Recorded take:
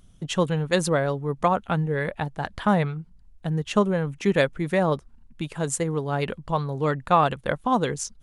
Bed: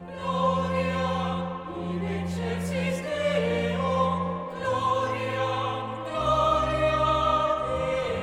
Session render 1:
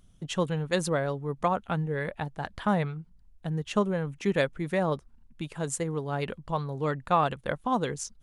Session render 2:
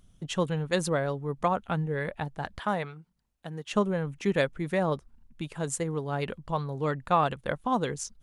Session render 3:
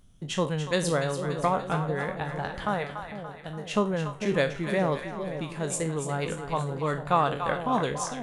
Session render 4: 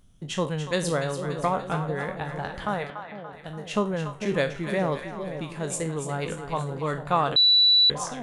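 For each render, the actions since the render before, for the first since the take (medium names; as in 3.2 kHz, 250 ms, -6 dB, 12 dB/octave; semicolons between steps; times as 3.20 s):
trim -5 dB
2.59–3.72 s: high-pass 410 Hz 6 dB/octave
spectral sustain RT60 0.31 s; two-band feedback delay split 670 Hz, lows 450 ms, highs 288 ms, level -8 dB
2.90–3.33 s: band-pass 180–3700 Hz; 7.36–7.90 s: bleep 3.95 kHz -14.5 dBFS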